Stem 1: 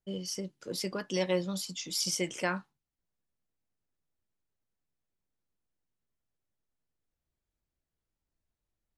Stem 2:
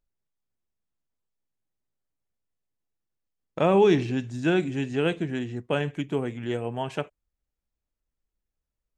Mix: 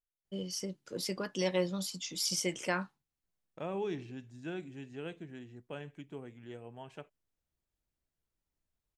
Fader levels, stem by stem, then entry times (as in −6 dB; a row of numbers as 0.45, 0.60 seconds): −1.5, −17.5 decibels; 0.25, 0.00 seconds